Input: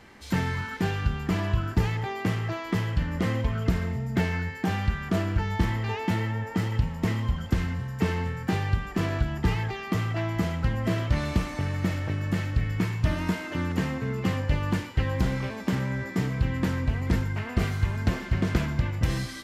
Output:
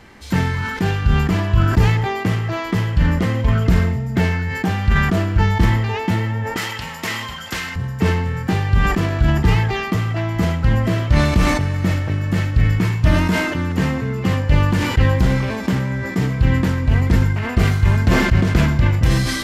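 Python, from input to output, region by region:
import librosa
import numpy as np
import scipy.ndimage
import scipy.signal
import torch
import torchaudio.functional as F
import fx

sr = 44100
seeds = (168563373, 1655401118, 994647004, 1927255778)

y = fx.chain(x, sr, fx.highpass(hz=270.0, slope=6),
    fx.tilt_shelf(db=-9.0, hz=730.0), at=(6.56, 7.76))
y = fx.low_shelf(y, sr, hz=100.0, db=4.5)
y = fx.sustainer(y, sr, db_per_s=37.0)
y = F.gain(torch.from_numpy(y), 5.5).numpy()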